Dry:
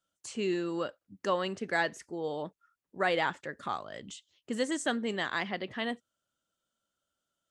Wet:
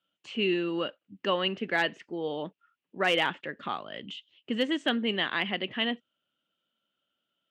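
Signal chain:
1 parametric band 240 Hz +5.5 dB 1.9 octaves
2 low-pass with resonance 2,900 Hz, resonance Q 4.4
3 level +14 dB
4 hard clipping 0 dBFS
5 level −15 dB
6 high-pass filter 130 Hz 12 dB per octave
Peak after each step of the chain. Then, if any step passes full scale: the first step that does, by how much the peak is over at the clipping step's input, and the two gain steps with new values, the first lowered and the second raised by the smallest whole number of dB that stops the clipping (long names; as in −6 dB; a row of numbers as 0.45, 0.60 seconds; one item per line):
−14.0, −10.5, +3.5, 0.0, −15.0, −13.0 dBFS
step 3, 3.5 dB
step 3 +10 dB, step 5 −11 dB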